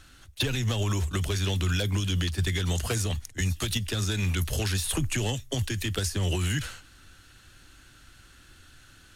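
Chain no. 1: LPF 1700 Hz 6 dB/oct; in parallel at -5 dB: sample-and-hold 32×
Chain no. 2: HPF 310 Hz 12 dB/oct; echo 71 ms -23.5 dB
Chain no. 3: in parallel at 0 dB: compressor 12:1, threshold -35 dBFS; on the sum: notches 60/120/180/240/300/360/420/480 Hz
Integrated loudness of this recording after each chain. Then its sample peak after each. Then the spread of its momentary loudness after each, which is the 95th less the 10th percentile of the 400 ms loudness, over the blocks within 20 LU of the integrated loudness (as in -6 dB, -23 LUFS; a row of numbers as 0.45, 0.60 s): -26.5, -32.0, -26.5 LUFS; -14.5, -17.0, -14.5 dBFS; 4, 5, 4 LU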